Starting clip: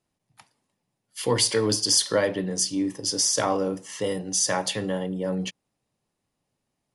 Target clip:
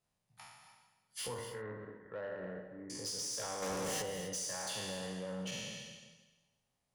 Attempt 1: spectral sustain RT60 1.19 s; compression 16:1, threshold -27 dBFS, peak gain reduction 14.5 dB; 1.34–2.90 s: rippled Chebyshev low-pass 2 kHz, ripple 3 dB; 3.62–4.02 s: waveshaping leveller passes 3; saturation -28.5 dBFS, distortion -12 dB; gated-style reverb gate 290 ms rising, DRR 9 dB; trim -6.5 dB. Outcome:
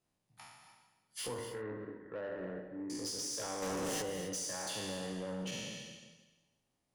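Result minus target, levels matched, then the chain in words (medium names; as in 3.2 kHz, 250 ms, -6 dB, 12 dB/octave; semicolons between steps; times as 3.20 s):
250 Hz band +3.0 dB
spectral sustain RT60 1.19 s; compression 16:1, threshold -27 dBFS, peak gain reduction 14.5 dB; peaking EQ 310 Hz -10 dB 0.65 oct; 1.34–2.90 s: rippled Chebyshev low-pass 2 kHz, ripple 3 dB; 3.62–4.02 s: waveshaping leveller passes 3; saturation -28.5 dBFS, distortion -14 dB; gated-style reverb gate 290 ms rising, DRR 9 dB; trim -6.5 dB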